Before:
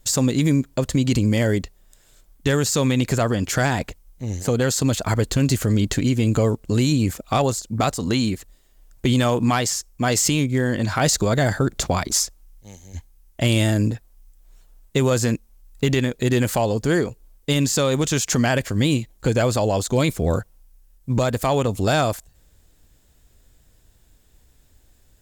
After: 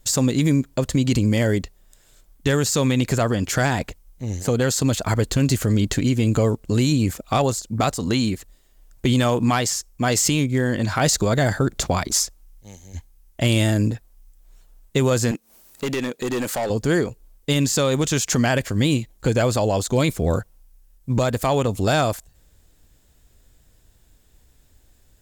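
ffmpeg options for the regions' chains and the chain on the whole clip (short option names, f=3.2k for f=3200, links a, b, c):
-filter_complex "[0:a]asettb=1/sr,asplit=3[a][b][c];[a]atrim=end=15.314[d];[b]atrim=start=15.31:end=16.7,asetpts=PTS-STARTPTS,afade=t=in:d=0.004:c=qsin,afade=t=out:st=1.386:d=0.004:c=qsin,highpass=220,asoftclip=type=hard:threshold=-20.5dB,acompressor=mode=upward:threshold=-35dB:ratio=2.5:attack=3.2:release=140:knee=2.83:detection=peak[e];[c]atrim=start=16.696[f];[d][e]acrossfade=d=0.004:c1=hsin:c2=qsin[g];[g][f]acrossfade=d=0.004:c1=qsin:c2=hsin"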